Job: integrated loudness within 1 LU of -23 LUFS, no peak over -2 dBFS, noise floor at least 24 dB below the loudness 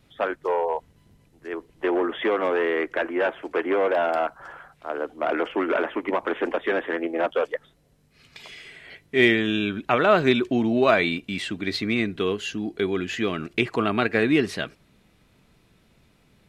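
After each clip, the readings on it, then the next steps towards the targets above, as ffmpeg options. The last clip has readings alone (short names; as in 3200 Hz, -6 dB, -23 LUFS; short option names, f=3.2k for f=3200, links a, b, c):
loudness -24.0 LUFS; peak -3.5 dBFS; loudness target -23.0 LUFS
-> -af "volume=1dB"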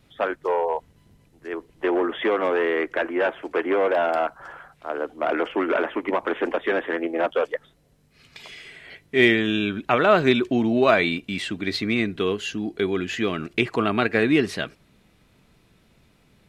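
loudness -23.0 LUFS; peak -2.5 dBFS; noise floor -60 dBFS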